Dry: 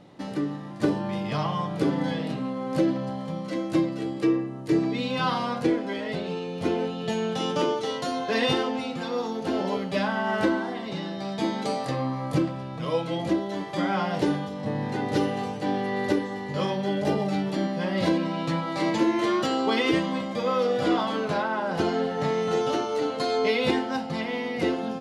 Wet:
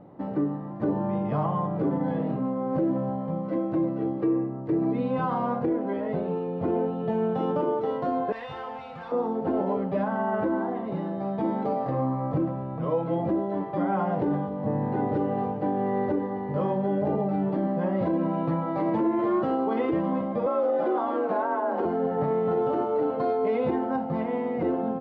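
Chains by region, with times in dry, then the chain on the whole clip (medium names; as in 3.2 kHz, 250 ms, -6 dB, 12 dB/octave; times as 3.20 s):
8.32–9.12 s: CVSD coder 64 kbps + amplifier tone stack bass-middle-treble 10-0-10 + level flattener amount 50%
20.46–21.85 s: high-pass 230 Hz + frequency shift +40 Hz
whole clip: Chebyshev low-pass 900 Hz, order 2; peak limiter -20.5 dBFS; trim +3 dB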